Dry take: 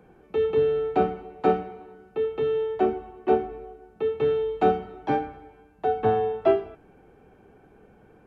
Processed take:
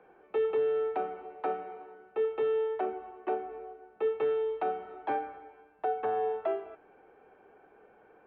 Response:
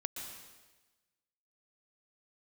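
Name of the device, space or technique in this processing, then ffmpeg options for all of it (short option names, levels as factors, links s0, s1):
DJ mixer with the lows and highs turned down: -filter_complex "[0:a]acrossover=split=380 2900:gain=0.1 1 0.0631[s0][s1][s2];[s0][s1][s2]amix=inputs=3:normalize=0,alimiter=limit=0.0794:level=0:latency=1:release=236"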